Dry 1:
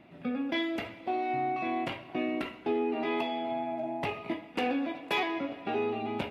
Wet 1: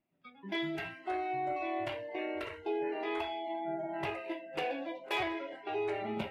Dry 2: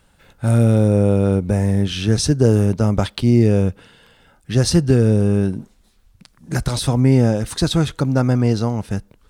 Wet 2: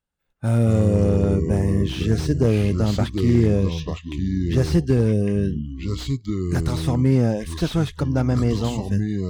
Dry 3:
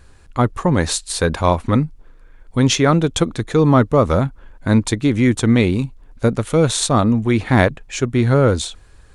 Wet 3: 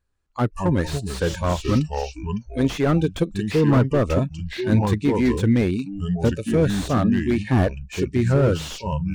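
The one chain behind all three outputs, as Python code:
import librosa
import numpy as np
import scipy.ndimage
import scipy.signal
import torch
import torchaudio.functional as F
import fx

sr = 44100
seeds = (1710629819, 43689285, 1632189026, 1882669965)

y = fx.echo_pitch(x, sr, ms=116, semitones=-4, count=2, db_per_echo=-6.0)
y = fx.noise_reduce_blind(y, sr, reduce_db=25)
y = fx.slew_limit(y, sr, full_power_hz=150.0)
y = y * librosa.db_to_amplitude(-4.0)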